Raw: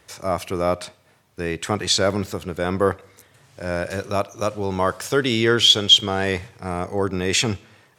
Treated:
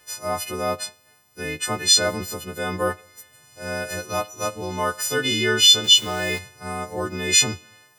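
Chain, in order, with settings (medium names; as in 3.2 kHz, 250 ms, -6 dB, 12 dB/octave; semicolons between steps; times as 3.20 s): partials quantised in pitch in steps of 3 st; 5.84–6.39 s: small samples zeroed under -29.5 dBFS; trim -4.5 dB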